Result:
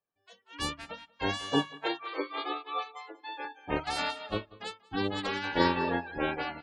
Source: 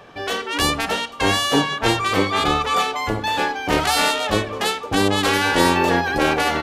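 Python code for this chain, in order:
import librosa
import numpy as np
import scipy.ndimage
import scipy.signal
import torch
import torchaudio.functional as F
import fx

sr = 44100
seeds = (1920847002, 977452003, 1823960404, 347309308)

p1 = fx.noise_reduce_blind(x, sr, reduce_db=17)
p2 = fx.spec_gate(p1, sr, threshold_db=-20, keep='strong')
p3 = fx.steep_highpass(p2, sr, hz=290.0, slope=96, at=(1.77, 3.45))
p4 = p3 + fx.echo_feedback(p3, sr, ms=188, feedback_pct=18, wet_db=-11, dry=0)
p5 = fx.upward_expand(p4, sr, threshold_db=-31.0, expansion=2.5)
y = p5 * librosa.db_to_amplitude(-7.0)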